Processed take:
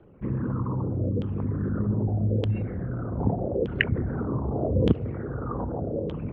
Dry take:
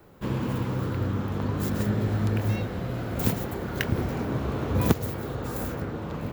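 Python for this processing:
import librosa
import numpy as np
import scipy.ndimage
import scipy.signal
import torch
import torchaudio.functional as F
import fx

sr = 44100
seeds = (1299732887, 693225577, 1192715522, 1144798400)

y = fx.envelope_sharpen(x, sr, power=2.0)
y = fx.filter_lfo_lowpass(y, sr, shape='saw_down', hz=0.82, low_hz=460.0, high_hz=3200.0, q=6.9)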